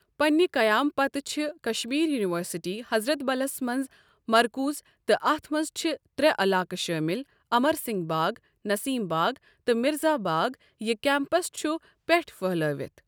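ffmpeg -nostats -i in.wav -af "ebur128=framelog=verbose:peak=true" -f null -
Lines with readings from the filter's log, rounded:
Integrated loudness:
  I:         -26.7 LUFS
  Threshold: -36.8 LUFS
Loudness range:
  LRA:         1.6 LU
  Threshold: -47.1 LUFS
  LRA low:   -27.8 LUFS
  LRA high:  -26.2 LUFS
True peak:
  Peak:       -7.3 dBFS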